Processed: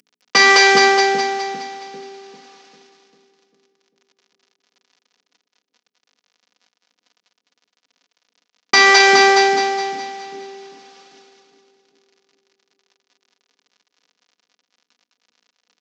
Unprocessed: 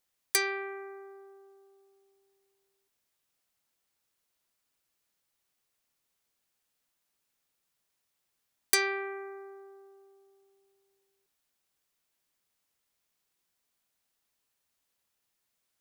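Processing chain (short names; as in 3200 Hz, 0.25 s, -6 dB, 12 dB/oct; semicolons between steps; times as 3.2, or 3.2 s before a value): CVSD 32 kbps; HPF 170 Hz 24 dB/oct; high shelf 3800 Hz +4 dB; notches 60/120/180/240/300/360/420 Hz; comb 4.1 ms, depth 68%; split-band echo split 440 Hz, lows 0.397 s, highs 0.208 s, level -3 dB; maximiser +25 dB; gain -1 dB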